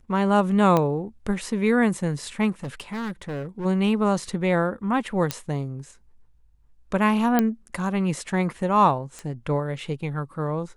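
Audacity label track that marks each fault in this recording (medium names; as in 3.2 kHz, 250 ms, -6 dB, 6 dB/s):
0.770000	0.770000	pop -9 dBFS
2.630000	3.660000	clipped -27.5 dBFS
5.310000	5.310000	pop -8 dBFS
7.390000	7.390000	pop -7 dBFS
9.190000	9.190000	pop -23 dBFS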